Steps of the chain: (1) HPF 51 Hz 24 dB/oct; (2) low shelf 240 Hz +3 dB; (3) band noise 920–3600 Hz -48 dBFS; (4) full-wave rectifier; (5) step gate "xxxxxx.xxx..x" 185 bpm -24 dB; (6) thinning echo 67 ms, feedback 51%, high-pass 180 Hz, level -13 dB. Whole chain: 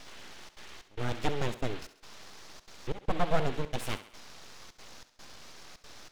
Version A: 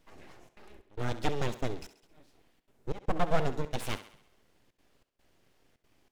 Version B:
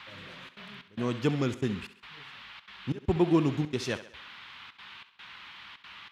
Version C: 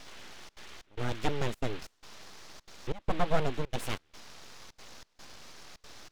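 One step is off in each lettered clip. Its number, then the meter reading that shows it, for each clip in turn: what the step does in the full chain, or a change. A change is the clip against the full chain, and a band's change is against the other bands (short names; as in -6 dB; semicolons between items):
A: 3, 4 kHz band -2.5 dB; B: 4, 250 Hz band +9.0 dB; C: 6, echo-to-direct -12.0 dB to none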